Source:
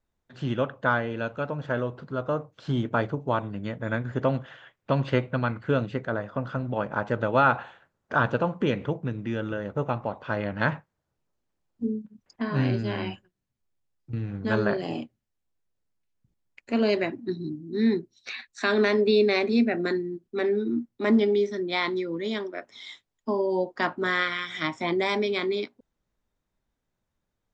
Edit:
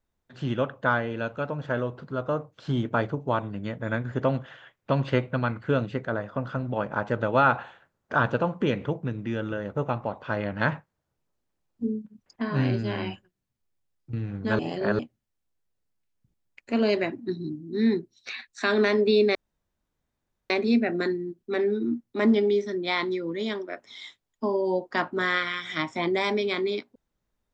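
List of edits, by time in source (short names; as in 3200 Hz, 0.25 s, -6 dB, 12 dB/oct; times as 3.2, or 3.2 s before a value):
14.59–14.99 reverse
19.35 insert room tone 1.15 s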